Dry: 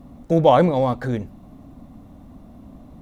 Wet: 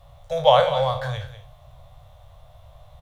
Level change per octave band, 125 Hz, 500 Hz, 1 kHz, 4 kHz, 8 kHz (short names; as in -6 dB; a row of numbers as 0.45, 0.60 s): -6.0 dB, -1.5 dB, -0.5 dB, +9.0 dB, n/a